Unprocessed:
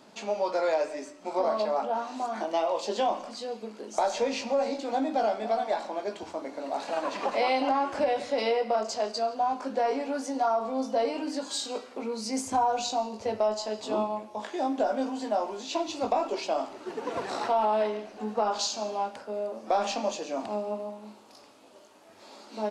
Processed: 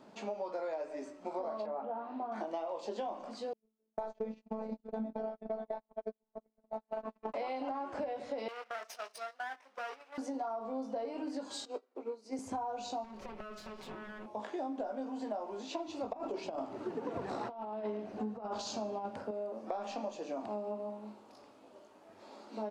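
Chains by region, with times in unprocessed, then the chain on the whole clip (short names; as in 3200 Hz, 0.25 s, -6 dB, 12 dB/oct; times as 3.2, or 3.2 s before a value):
1.66–2.32 HPF 63 Hz + air absorption 400 m
3.53–7.34 gate -31 dBFS, range -43 dB + robotiser 219 Hz + tilt -3 dB/oct
8.48–10.18 minimum comb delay 0.34 ms + HPF 1200 Hz + gate -42 dBFS, range -11 dB
11.65–12.39 resonant low shelf 240 Hz -9 dB, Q 3 + upward expander 2.5:1, over -45 dBFS
13.04–14.26 minimum comb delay 5.3 ms + bell 2500 Hz +6.5 dB 0.96 oct + compressor 20:1, threshold -38 dBFS
16.13–19.31 negative-ratio compressor -30 dBFS, ratio -0.5 + bell 98 Hz +10.5 dB 2.7 oct
whole clip: high shelf 2100 Hz -11 dB; compressor, threshold -34 dBFS; gain -1.5 dB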